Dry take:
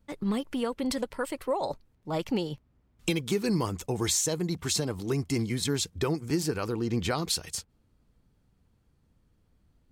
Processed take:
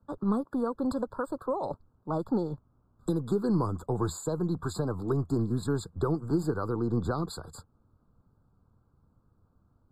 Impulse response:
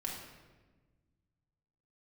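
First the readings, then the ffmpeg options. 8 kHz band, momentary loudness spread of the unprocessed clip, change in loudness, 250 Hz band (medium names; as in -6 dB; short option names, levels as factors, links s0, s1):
-14.5 dB, 7 LU, -1.0 dB, +0.5 dB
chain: -filter_complex "[0:a]acrossover=split=160[s0][s1];[s0]aeval=exprs='max(val(0),0)':c=same[s2];[s2][s1]amix=inputs=2:normalize=0,equalizer=f=95:t=o:w=1.4:g=7.5,acrossover=split=470|3000[s3][s4][s5];[s4]acompressor=threshold=0.0158:ratio=6[s6];[s3][s6][s5]amix=inputs=3:normalize=0,highshelf=f=1700:t=q:w=3:g=-11,afftfilt=real='re*eq(mod(floor(b*sr/1024/1700),2),0)':imag='im*eq(mod(floor(b*sr/1024/1700),2),0)':win_size=1024:overlap=0.75"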